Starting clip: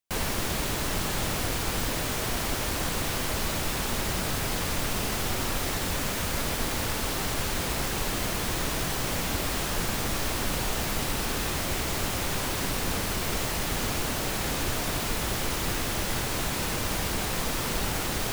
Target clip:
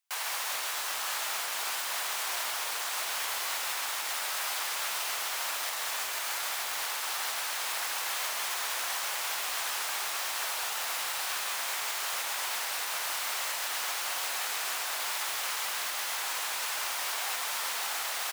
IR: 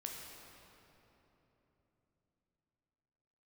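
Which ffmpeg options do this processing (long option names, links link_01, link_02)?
-filter_complex "[0:a]highpass=frequency=800:width=0.5412,highpass=frequency=800:width=1.3066,alimiter=level_in=3.5dB:limit=-24dB:level=0:latency=1:release=379,volume=-3.5dB,asplit=8[link_01][link_02][link_03][link_04][link_05][link_06][link_07][link_08];[link_02]adelay=133,afreqshift=-88,volume=-7dB[link_09];[link_03]adelay=266,afreqshift=-176,volume=-11.9dB[link_10];[link_04]adelay=399,afreqshift=-264,volume=-16.8dB[link_11];[link_05]adelay=532,afreqshift=-352,volume=-21.6dB[link_12];[link_06]adelay=665,afreqshift=-440,volume=-26.5dB[link_13];[link_07]adelay=798,afreqshift=-528,volume=-31.4dB[link_14];[link_08]adelay=931,afreqshift=-616,volume=-36.3dB[link_15];[link_01][link_09][link_10][link_11][link_12][link_13][link_14][link_15]amix=inputs=8:normalize=0,asplit=2[link_16][link_17];[1:a]atrim=start_sample=2205,asetrate=32193,aresample=44100[link_18];[link_17][link_18]afir=irnorm=-1:irlink=0,volume=-8.5dB[link_19];[link_16][link_19]amix=inputs=2:normalize=0,volume=1.5dB"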